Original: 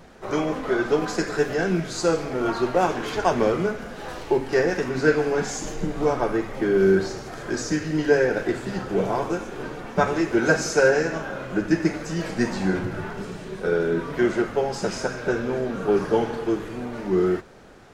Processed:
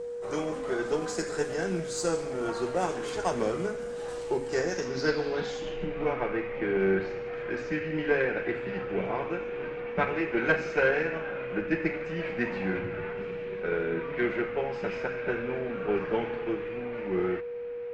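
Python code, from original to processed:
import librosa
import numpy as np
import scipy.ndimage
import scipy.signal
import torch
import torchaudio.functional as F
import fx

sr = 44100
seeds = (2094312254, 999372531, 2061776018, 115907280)

y = fx.filter_sweep_lowpass(x, sr, from_hz=8600.0, to_hz=2400.0, start_s=4.4, end_s=6.0, q=3.9)
y = y + 10.0 ** (-25.0 / 20.0) * np.sin(2.0 * np.pi * 480.0 * np.arange(len(y)) / sr)
y = fx.cheby_harmonics(y, sr, harmonics=(2, 6), levels_db=(-16, -35), full_scale_db=-2.0)
y = F.gain(torch.from_numpy(y), -8.5).numpy()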